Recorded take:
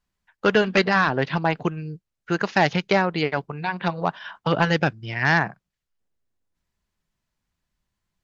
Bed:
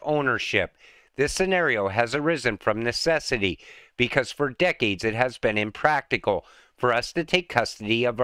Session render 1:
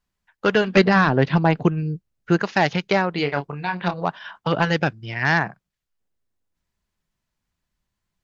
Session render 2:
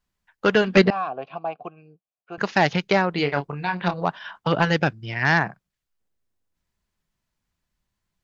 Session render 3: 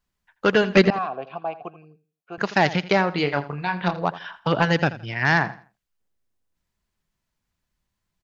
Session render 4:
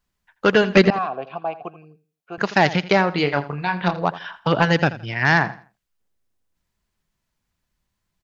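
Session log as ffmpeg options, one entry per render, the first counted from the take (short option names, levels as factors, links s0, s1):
-filter_complex "[0:a]asettb=1/sr,asplit=3[s0][s1][s2];[s0]atrim=end=0.764[s3];[s1]atrim=start=0.76:end=2.4,asetpts=PTS-STARTPTS,afade=t=in:d=0.004:c=qsin,afade=t=out:st=1.636:d=0.004:c=qsin,lowshelf=f=490:g=8.5[s4];[s2]atrim=start=2.396[s5];[s3][s4]acrossfade=d=0.004:c1=hsin:c2=qsin[s6];[s6][s5]acrossfade=d=0.004:c1=qsin:c2=hsin,asettb=1/sr,asplit=3[s7][s8][s9];[s7]atrim=end=3.144[s10];[s8]atrim=start=3.14:end=3.94,asetpts=PTS-STARTPTS,afade=t=in:d=0.004:c=qsin,afade=t=out:st=0.796:d=0.004:c=qsin,asplit=2[s11][s12];[s12]adelay=28,volume=0.422[s13];[s11][s13]amix=inputs=2:normalize=0,atrim=end_sample=35280[s14];[s9]atrim=start=3.936[s15];[s10][s14]acrossfade=d=0.004:c1=hsin:c2=qsin[s16];[s16][s15]acrossfade=d=0.004:c1=qsin:c2=hsin"
-filter_complex "[0:a]asettb=1/sr,asplit=3[s0][s1][s2];[s0]atrim=end=0.904[s3];[s1]atrim=start=0.9:end=2.38,asetpts=PTS-STARTPTS,afade=t=in:d=0.004:c=qsin,afade=t=out:st=1.476:d=0.004:c=qsin,asplit=3[s4][s5][s6];[s4]bandpass=f=730:t=q:w=8,volume=1[s7];[s5]bandpass=f=1090:t=q:w=8,volume=0.501[s8];[s6]bandpass=f=2440:t=q:w=8,volume=0.355[s9];[s7][s8][s9]amix=inputs=3:normalize=0[s10];[s2]atrim=start=2.376[s11];[s3][s10]acrossfade=d=0.004:c1=hsin:c2=qsin[s12];[s12][s11]acrossfade=d=0.004:c1=qsin:c2=hsin"
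-af "aecho=1:1:83|166|249:0.158|0.0428|0.0116"
-af "volume=1.33,alimiter=limit=0.794:level=0:latency=1"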